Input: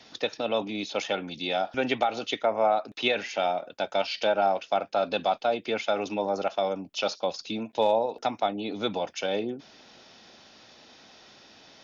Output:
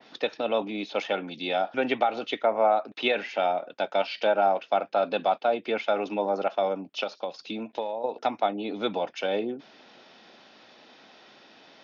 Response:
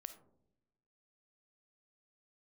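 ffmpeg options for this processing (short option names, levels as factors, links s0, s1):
-filter_complex "[0:a]asettb=1/sr,asplit=3[s0][s1][s2];[s0]atrim=end=7.034[s3];[s1]atrim=start=7.03:end=8.04,asetpts=PTS-STARTPTS,afade=t=in:d=0.004:c=qsin,afade=t=out:st=1.006:d=0.004:c=qsin,acompressor=threshold=0.0355:ratio=12[s4];[s2]atrim=start=8.036[s5];[s3][s4]acrossfade=d=0.004:c1=hsin:c2=qsin[s6];[s6][s5]acrossfade=d=0.004:c1=qsin:c2=hsin,highpass=190,lowpass=3600,adynamicequalizer=threshold=0.01:dfrequency=2500:dqfactor=0.7:tfrequency=2500:tqfactor=0.7:attack=5:release=100:ratio=0.375:range=2:mode=cutabove:tftype=highshelf,volume=1.19"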